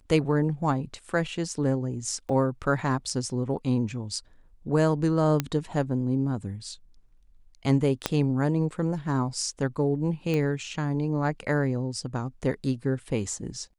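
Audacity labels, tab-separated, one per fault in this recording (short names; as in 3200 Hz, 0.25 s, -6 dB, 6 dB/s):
2.290000	2.290000	gap 3.8 ms
5.400000	5.400000	pop -10 dBFS
8.060000	8.060000	pop -8 dBFS
10.340000	10.340000	pop -16 dBFS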